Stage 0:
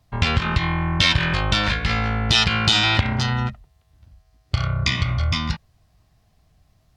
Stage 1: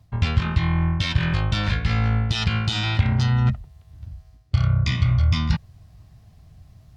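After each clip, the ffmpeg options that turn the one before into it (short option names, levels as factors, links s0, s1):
-af "areverse,acompressor=threshold=0.0355:ratio=5,areverse,equalizer=f=100:w=0.61:g=11,volume=1.5"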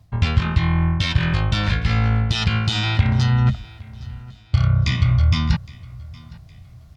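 -af "aecho=1:1:813|1626|2439:0.0794|0.0286|0.0103,volume=1.33"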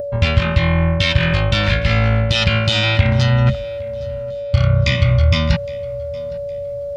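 -af "aeval=exprs='val(0)+0.0501*sin(2*PI*570*n/s)':c=same,adynamicequalizer=threshold=0.00891:dfrequency=2500:dqfactor=1.2:tfrequency=2500:tqfactor=1.2:attack=5:release=100:ratio=0.375:range=3:mode=boostabove:tftype=bell,acompressor=mode=upward:threshold=0.0501:ratio=2.5,volume=1.33"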